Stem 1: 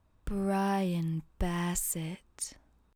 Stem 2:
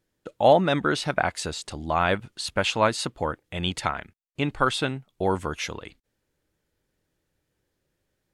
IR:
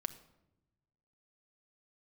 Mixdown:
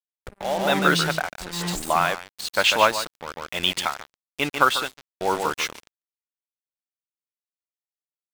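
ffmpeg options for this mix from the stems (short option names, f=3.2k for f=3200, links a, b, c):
-filter_complex "[0:a]acrossover=split=7400[a][b];[b]acompressor=threshold=-40dB:ratio=4:attack=1:release=60[c];[a][c]amix=inputs=2:normalize=0,volume=2dB,asplit=2[d][e];[e]volume=-10.5dB[f];[1:a]highpass=f=880:p=1,acontrast=82,acrusher=bits=6:mode=log:mix=0:aa=0.000001,volume=1dB,asplit=3[g][h][i];[h]volume=-21dB[j];[i]volume=-7dB[k];[2:a]atrim=start_sample=2205[l];[f][j]amix=inputs=2:normalize=0[m];[m][l]afir=irnorm=-1:irlink=0[n];[k]aecho=0:1:145:1[o];[d][g][n][o]amix=inputs=4:normalize=0,highshelf=f=8k:g=-5,tremolo=f=1.1:d=0.82,acrusher=bits=4:mix=0:aa=0.5"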